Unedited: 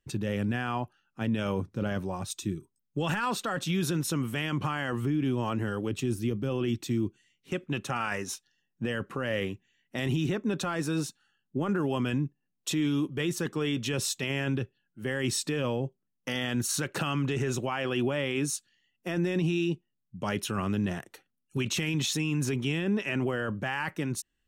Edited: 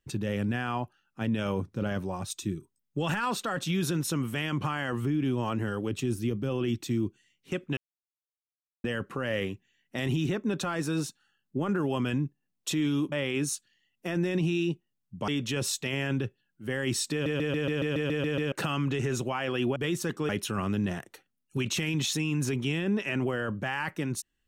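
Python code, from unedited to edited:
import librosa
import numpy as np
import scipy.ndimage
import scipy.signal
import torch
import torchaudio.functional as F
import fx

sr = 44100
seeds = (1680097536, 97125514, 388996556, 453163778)

y = fx.edit(x, sr, fx.silence(start_s=7.77, length_s=1.07),
    fx.swap(start_s=13.12, length_s=0.53, other_s=18.13, other_length_s=2.16),
    fx.stutter_over(start_s=15.49, slice_s=0.14, count=10), tone=tone)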